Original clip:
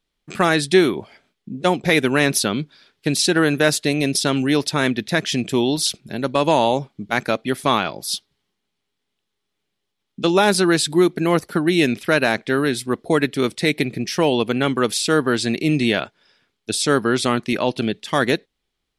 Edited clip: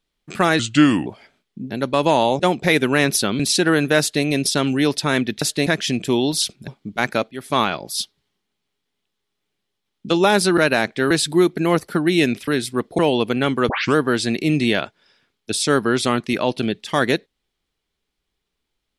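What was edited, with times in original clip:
0.59–0.97 s: speed 80%
2.61–3.09 s: delete
3.69–3.94 s: copy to 5.11 s
6.12–6.81 s: move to 1.61 s
7.45–7.73 s: fade in, from -16.5 dB
12.08–12.61 s: move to 10.71 s
13.12–14.18 s: delete
14.88 s: tape start 0.27 s

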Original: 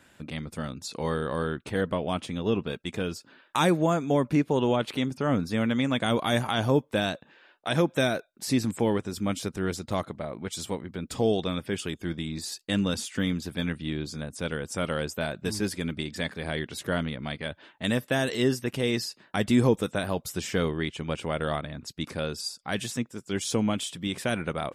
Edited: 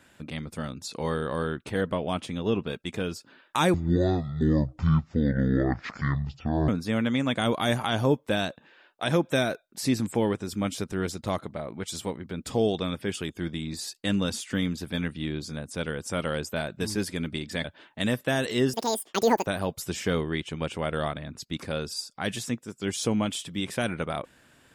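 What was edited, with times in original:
3.74–5.33 s: speed 54%
16.29–17.48 s: delete
18.57–19.94 s: speed 188%

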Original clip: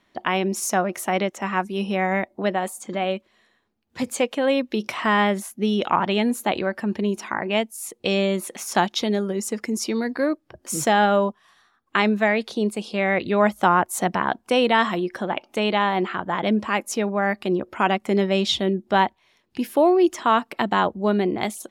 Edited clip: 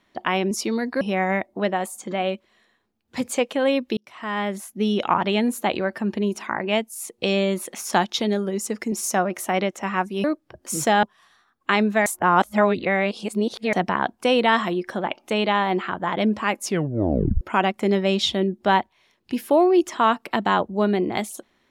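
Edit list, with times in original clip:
0.51–1.83 s: swap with 9.74–10.24 s
4.79–5.69 s: fade in
11.03–11.29 s: delete
12.32–13.99 s: reverse
16.89 s: tape stop 0.78 s

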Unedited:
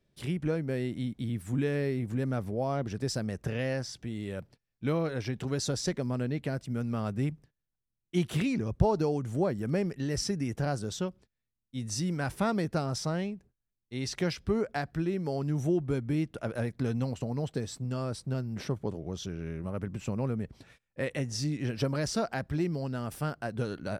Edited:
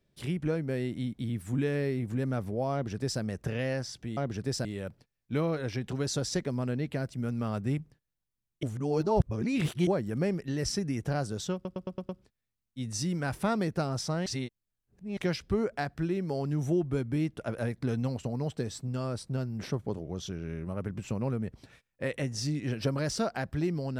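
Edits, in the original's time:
2.73–3.21 s: copy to 4.17 s
8.15–9.39 s: reverse
11.06 s: stutter 0.11 s, 6 plays
13.23–14.14 s: reverse

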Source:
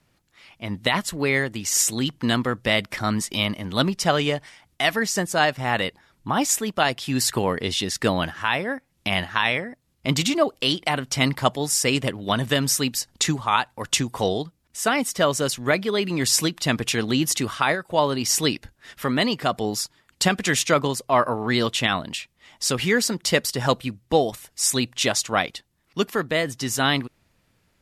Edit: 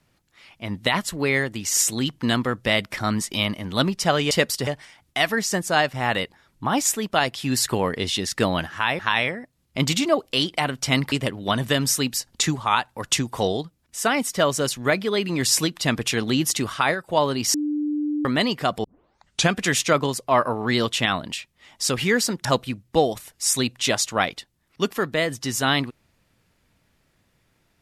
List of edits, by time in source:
8.63–9.28 s: delete
11.41–11.93 s: delete
18.35–19.06 s: bleep 297 Hz -21.5 dBFS
19.65 s: tape start 0.68 s
23.26–23.62 s: move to 4.31 s

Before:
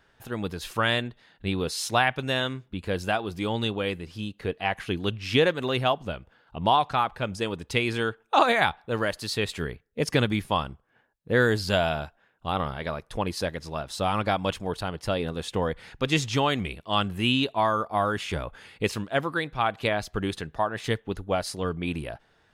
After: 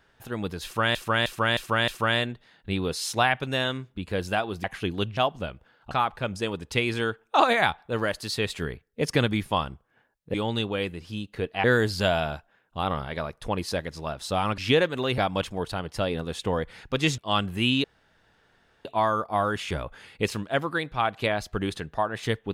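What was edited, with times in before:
0.64–0.95 s: loop, 5 plays
3.40–4.70 s: move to 11.33 s
5.23–5.83 s: move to 14.27 s
6.57–6.90 s: delete
16.27–16.80 s: delete
17.46 s: insert room tone 1.01 s

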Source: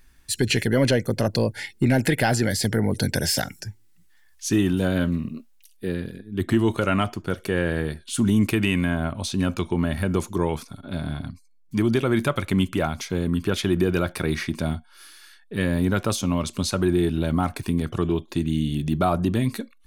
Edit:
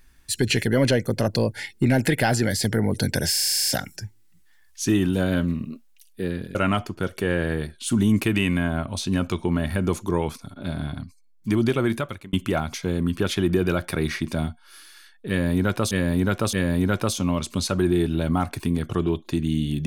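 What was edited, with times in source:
3.31 s: stutter 0.04 s, 10 plays
6.19–6.82 s: delete
12.07–12.60 s: fade out
15.56–16.18 s: loop, 3 plays

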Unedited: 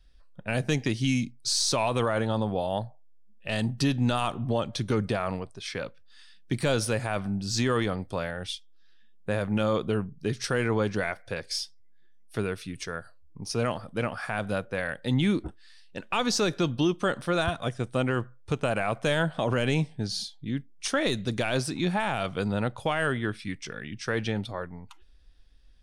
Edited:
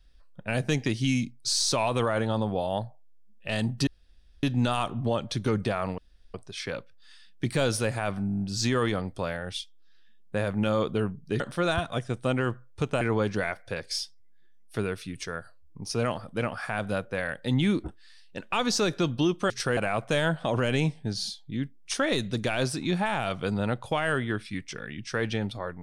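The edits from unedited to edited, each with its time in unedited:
3.87 s: insert room tone 0.56 s
5.42 s: insert room tone 0.36 s
7.35 s: stutter 0.02 s, 8 plays
10.34–10.61 s: swap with 17.10–18.71 s

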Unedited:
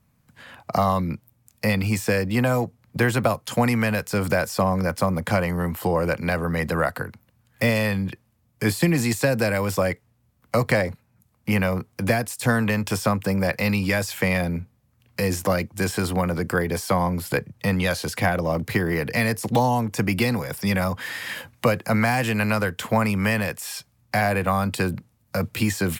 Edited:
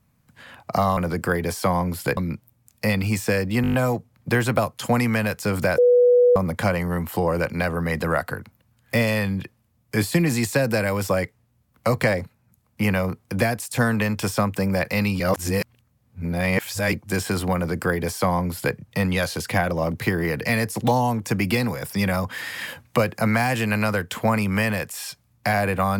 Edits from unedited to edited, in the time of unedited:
2.42 s: stutter 0.02 s, 7 plays
4.46–5.04 s: bleep 490 Hz -11.5 dBFS
13.88–15.61 s: reverse
16.23–17.43 s: copy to 0.97 s

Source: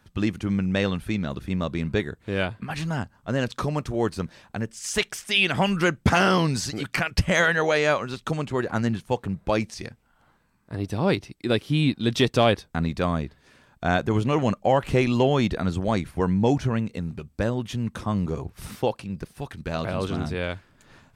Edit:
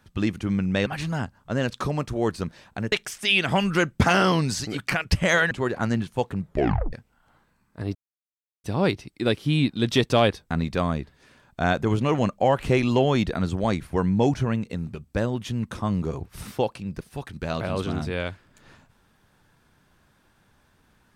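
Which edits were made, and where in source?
0.86–2.64 s: delete
4.70–4.98 s: delete
7.57–8.44 s: delete
9.38 s: tape stop 0.48 s
10.88 s: insert silence 0.69 s

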